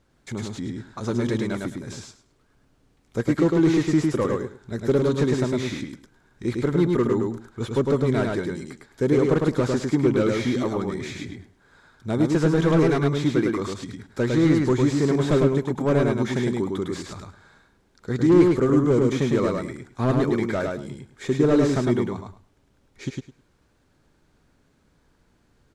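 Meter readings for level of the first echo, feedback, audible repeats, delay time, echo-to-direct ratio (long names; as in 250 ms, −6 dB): −3.0 dB, 18%, 3, 105 ms, −3.0 dB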